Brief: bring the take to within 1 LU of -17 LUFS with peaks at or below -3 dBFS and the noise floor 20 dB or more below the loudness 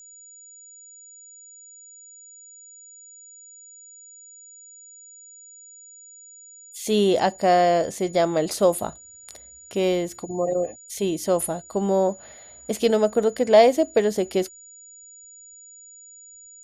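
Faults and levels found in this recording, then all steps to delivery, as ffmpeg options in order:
steady tone 6900 Hz; tone level -44 dBFS; loudness -22.0 LUFS; peak -4.5 dBFS; loudness target -17.0 LUFS
-> -af "bandreject=f=6.9k:w=30"
-af "volume=5dB,alimiter=limit=-3dB:level=0:latency=1"

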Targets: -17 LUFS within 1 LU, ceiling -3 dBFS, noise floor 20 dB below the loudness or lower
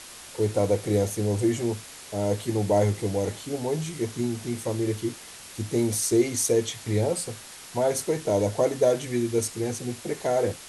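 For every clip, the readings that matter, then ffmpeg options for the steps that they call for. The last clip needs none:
noise floor -44 dBFS; noise floor target -47 dBFS; loudness -26.5 LUFS; peak -10.0 dBFS; loudness target -17.0 LUFS
-> -af "afftdn=nr=6:nf=-44"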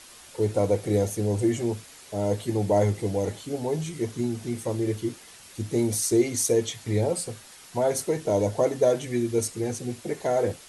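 noise floor -49 dBFS; loudness -26.5 LUFS; peak -10.5 dBFS; loudness target -17.0 LUFS
-> -af "volume=9.5dB,alimiter=limit=-3dB:level=0:latency=1"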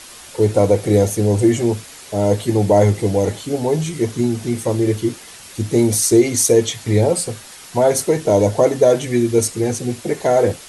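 loudness -17.0 LUFS; peak -3.0 dBFS; noise floor -39 dBFS

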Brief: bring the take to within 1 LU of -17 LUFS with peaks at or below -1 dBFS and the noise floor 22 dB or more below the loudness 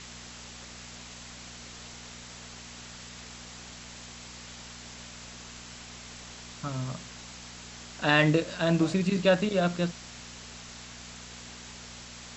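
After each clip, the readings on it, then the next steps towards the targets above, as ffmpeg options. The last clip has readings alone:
hum 60 Hz; harmonics up to 240 Hz; hum level -50 dBFS; noise floor -46 dBFS; noise floor target -49 dBFS; loudness -27.0 LUFS; peak -7.5 dBFS; loudness target -17.0 LUFS
-> -af "bandreject=f=60:t=h:w=4,bandreject=f=120:t=h:w=4,bandreject=f=180:t=h:w=4,bandreject=f=240:t=h:w=4"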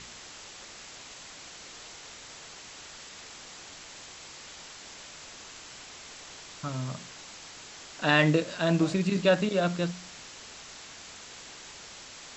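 hum none; noise floor -47 dBFS; noise floor target -49 dBFS
-> -af "afftdn=nr=6:nf=-47"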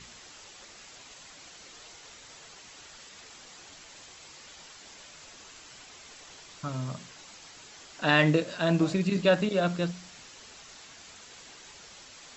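noise floor -50 dBFS; loudness -27.0 LUFS; peak -7.0 dBFS; loudness target -17.0 LUFS
-> -af "volume=10dB,alimiter=limit=-1dB:level=0:latency=1"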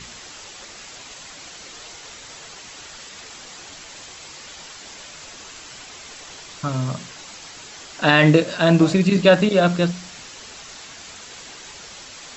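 loudness -17.5 LUFS; peak -1.0 dBFS; noise floor -40 dBFS

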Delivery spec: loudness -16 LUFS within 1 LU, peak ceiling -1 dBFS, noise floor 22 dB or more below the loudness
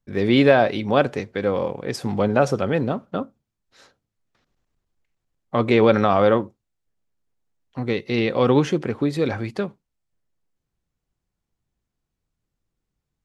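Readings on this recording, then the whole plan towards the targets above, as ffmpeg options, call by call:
loudness -21.0 LUFS; peak -3.0 dBFS; loudness target -16.0 LUFS
-> -af "volume=5dB,alimiter=limit=-1dB:level=0:latency=1"

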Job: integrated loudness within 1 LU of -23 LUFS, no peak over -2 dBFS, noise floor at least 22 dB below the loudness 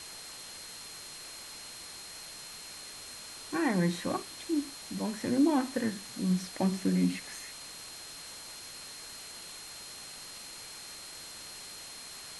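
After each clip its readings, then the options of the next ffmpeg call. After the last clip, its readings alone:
steady tone 4200 Hz; tone level -48 dBFS; noise floor -46 dBFS; noise floor target -58 dBFS; loudness -35.5 LUFS; peak -16.5 dBFS; loudness target -23.0 LUFS
-> -af "bandreject=f=4.2k:w=30"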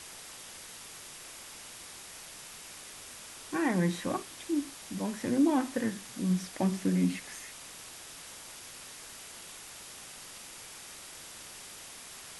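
steady tone none; noise floor -48 dBFS; noise floor target -58 dBFS
-> -af "afftdn=nr=10:nf=-48"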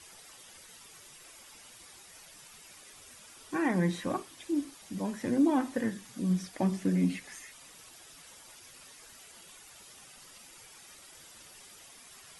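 noise floor -54 dBFS; loudness -31.5 LUFS; peak -17.0 dBFS; loudness target -23.0 LUFS
-> -af "volume=8.5dB"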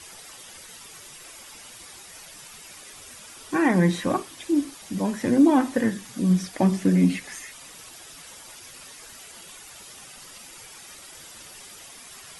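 loudness -23.0 LUFS; peak -8.5 dBFS; noise floor -45 dBFS

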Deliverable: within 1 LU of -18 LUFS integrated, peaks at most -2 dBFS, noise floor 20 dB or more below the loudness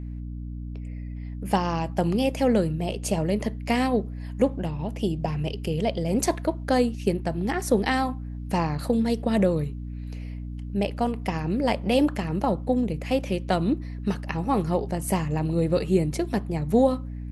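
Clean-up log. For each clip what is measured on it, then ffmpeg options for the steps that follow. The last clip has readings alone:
hum 60 Hz; harmonics up to 300 Hz; hum level -31 dBFS; loudness -25.5 LUFS; peak -9.0 dBFS; loudness target -18.0 LUFS
-> -af "bandreject=f=60:t=h:w=4,bandreject=f=120:t=h:w=4,bandreject=f=180:t=h:w=4,bandreject=f=240:t=h:w=4,bandreject=f=300:t=h:w=4"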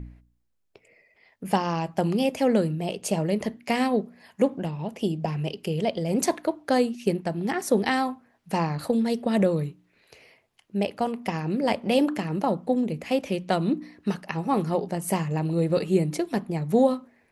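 hum none; loudness -26.0 LUFS; peak -8.5 dBFS; loudness target -18.0 LUFS
-> -af "volume=8dB,alimiter=limit=-2dB:level=0:latency=1"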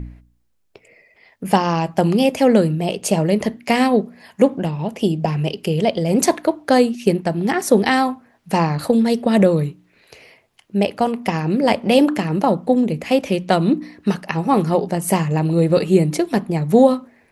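loudness -18.0 LUFS; peak -2.0 dBFS; noise floor -60 dBFS

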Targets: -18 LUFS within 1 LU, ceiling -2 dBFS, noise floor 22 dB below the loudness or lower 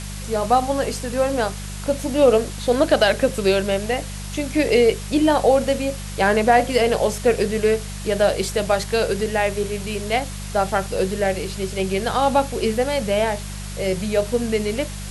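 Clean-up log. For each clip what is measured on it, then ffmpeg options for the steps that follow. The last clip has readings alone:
hum 50 Hz; harmonics up to 200 Hz; hum level -29 dBFS; noise floor -31 dBFS; noise floor target -43 dBFS; loudness -20.5 LUFS; peak -3.5 dBFS; loudness target -18.0 LUFS
-> -af "bandreject=f=50:t=h:w=4,bandreject=f=100:t=h:w=4,bandreject=f=150:t=h:w=4,bandreject=f=200:t=h:w=4"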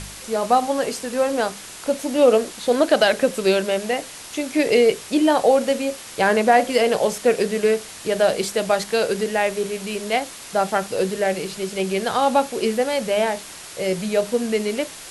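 hum none; noise floor -38 dBFS; noise floor target -43 dBFS
-> -af "afftdn=nr=6:nf=-38"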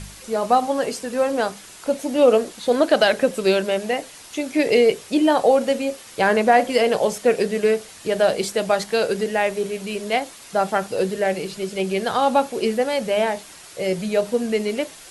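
noise floor -43 dBFS; loudness -21.0 LUFS; peak -4.0 dBFS; loudness target -18.0 LUFS
-> -af "volume=3dB,alimiter=limit=-2dB:level=0:latency=1"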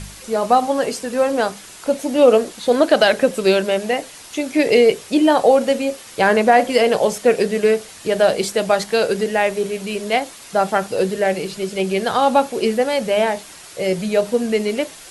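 loudness -18.0 LUFS; peak -2.0 dBFS; noise floor -40 dBFS

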